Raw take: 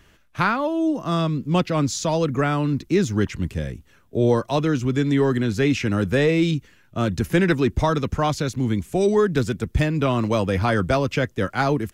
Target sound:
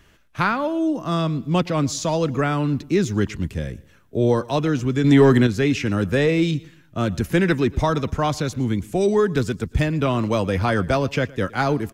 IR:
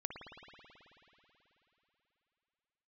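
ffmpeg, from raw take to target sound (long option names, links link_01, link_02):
-filter_complex "[0:a]asplit=2[link_01][link_02];[link_02]aecho=0:1:116|232|348:0.0794|0.0294|0.0109[link_03];[link_01][link_03]amix=inputs=2:normalize=0,asettb=1/sr,asplit=3[link_04][link_05][link_06];[link_04]atrim=end=5.044[link_07];[link_05]atrim=start=5.04:end=5.47,asetpts=PTS-STARTPTS,afade=type=in:duration=0.004:curve=qsin,afade=type=out:start_time=0.426:duration=0.004:curve=qsin,acontrast=84[link_08];[link_06]atrim=start=5.466[link_09];[link_07][link_08]acrossfade=duration=0.004:curve1=hsin:curve2=qsin[link_10];[link_10][link_09]acrossfade=duration=0.004:curve1=qsin:curve2=hsin"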